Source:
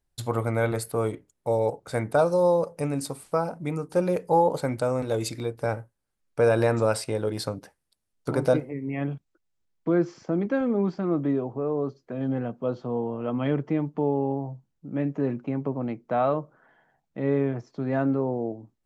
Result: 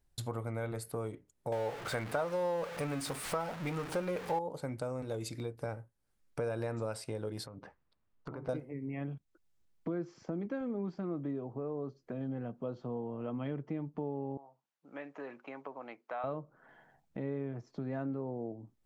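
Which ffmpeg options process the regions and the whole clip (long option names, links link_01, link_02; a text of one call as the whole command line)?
ffmpeg -i in.wav -filter_complex "[0:a]asettb=1/sr,asplit=3[link_01][link_02][link_03];[link_01]atrim=end=1.524[link_04];[link_02]atrim=start=1.52:end=4.39,asetpts=PTS-STARTPTS,afade=type=in:duration=0.004:curve=qsin,afade=type=out:start_time=2.866:duration=0.004:curve=qsin,aeval=exprs='val(0)+0.5*0.0266*sgn(val(0))':channel_layout=same,equalizer=frequency=1700:width_type=o:width=2.9:gain=10.5[link_05];[link_03]atrim=start=4.386[link_06];[link_04][link_05]acrossfade=duration=0.004:curve1=hsin:curve2=qsin[link_07];[link_07][link_06]acrossfade=duration=0.004:curve1=qsin:curve2=hsin,asettb=1/sr,asplit=3[link_08][link_09][link_10];[link_08]atrim=end=7.464[link_11];[link_09]atrim=start=7.46:end=8.49,asetpts=PTS-STARTPTS,afade=type=in:duration=0.004:curve=qsin,afade=type=out:start_time=1.026:duration=0.004:curve=qsin,lowpass=2500,equalizer=frequency=1100:width_type=o:width=0.54:gain=6,acompressor=threshold=-43dB:ratio=3:attack=3.2:release=140:knee=1:detection=peak[link_12];[link_10]atrim=start=8.486[link_13];[link_11][link_12]acrossfade=duration=0.004:curve1=hsin:curve2=qsin[link_14];[link_14][link_13]acrossfade=duration=0.004:curve1=qsin:curve2=hsin,asettb=1/sr,asplit=3[link_15][link_16][link_17];[link_15]atrim=end=14.374[link_18];[link_16]atrim=start=14.37:end=16.24,asetpts=PTS-STARTPTS,afade=type=in:duration=0.004:curve=qsin,afade=type=out:start_time=1.866:duration=0.004:curve=qsin,highpass=900,highshelf=frequency=5700:gain=-11[link_19];[link_17]atrim=start=16.236[link_20];[link_18][link_19]acrossfade=duration=0.004:curve1=hsin:curve2=qsin[link_21];[link_21][link_20]acrossfade=duration=0.004:curve1=qsin:curve2=hsin,lowshelf=frequency=230:gain=3.5,acompressor=threshold=-43dB:ratio=2.5,volume=1dB" out.wav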